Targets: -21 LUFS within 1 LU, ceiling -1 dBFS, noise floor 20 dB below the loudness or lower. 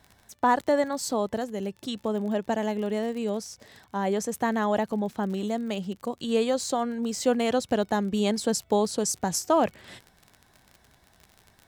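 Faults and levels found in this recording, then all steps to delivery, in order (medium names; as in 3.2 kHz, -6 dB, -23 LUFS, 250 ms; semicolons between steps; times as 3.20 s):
tick rate 41 per s; loudness -27.5 LUFS; peak level -11.0 dBFS; loudness target -21.0 LUFS
-> de-click; trim +6.5 dB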